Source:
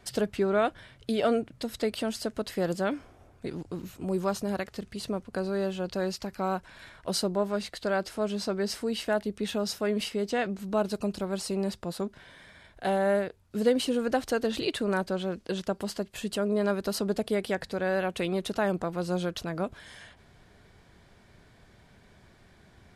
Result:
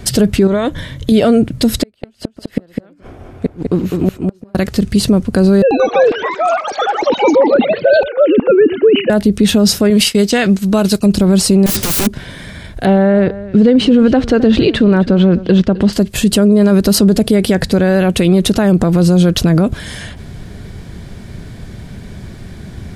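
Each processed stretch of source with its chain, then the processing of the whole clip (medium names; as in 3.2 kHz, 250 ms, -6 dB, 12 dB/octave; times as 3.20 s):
0.47–1.12 s: rippled EQ curve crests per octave 1.1, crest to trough 8 dB + compression 2.5:1, threshold -36 dBFS
1.83–4.55 s: tone controls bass -8 dB, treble -12 dB + inverted gate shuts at -27 dBFS, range -38 dB + delay 204 ms -4 dB
5.62–9.10 s: formants replaced by sine waves + frequency-shifting echo 113 ms, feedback 44%, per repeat -46 Hz, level -17.5 dB + ever faster or slower copies 89 ms, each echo +7 st, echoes 2, each echo -6 dB
9.90–11.06 s: expander -36 dBFS + tilt shelf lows -5.5 dB, about 1.1 kHz + tape noise reduction on one side only decoder only
11.66–12.07 s: overdrive pedal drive 35 dB, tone 5.8 kHz, clips at -19 dBFS + integer overflow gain 31.5 dB
12.85–15.93 s: low-pass 3 kHz + compression 2:1, threshold -29 dBFS + delay 261 ms -18.5 dB
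whole clip: FFT filter 190 Hz 0 dB, 900 Hz -13 dB, 11 kHz -6 dB; loudness maximiser +30 dB; trim -1 dB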